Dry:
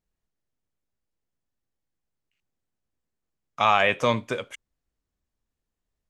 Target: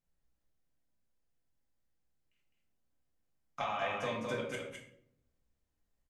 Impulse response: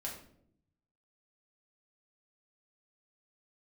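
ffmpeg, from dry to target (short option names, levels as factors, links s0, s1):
-filter_complex "[0:a]acompressor=threshold=0.0282:ratio=8,aecho=1:1:208:0.596[s0];[1:a]atrim=start_sample=2205[s1];[s0][s1]afir=irnorm=-1:irlink=0,volume=0.841"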